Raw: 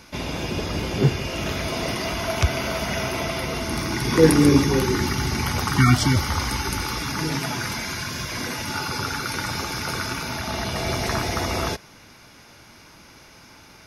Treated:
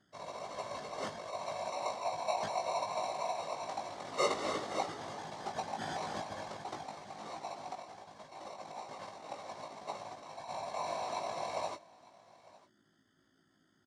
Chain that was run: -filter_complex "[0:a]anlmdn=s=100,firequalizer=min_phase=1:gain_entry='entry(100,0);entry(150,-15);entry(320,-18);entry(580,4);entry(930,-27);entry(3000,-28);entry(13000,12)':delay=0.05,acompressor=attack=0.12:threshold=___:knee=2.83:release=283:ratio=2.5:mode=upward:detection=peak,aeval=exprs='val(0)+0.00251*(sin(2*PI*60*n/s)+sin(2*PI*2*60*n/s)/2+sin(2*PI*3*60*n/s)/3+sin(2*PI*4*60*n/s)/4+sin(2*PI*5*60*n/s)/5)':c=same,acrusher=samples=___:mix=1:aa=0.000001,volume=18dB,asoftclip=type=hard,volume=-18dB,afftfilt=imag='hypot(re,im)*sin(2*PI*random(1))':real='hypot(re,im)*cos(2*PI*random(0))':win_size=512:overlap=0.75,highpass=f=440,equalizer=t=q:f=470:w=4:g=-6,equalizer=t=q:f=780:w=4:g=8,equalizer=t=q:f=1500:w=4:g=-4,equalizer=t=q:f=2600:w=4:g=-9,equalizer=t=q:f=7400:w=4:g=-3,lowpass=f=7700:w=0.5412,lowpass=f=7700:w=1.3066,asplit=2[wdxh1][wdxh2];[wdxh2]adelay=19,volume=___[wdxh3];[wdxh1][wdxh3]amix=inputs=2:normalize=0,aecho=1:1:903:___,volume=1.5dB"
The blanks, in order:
-46dB, 27, -4dB, 0.0794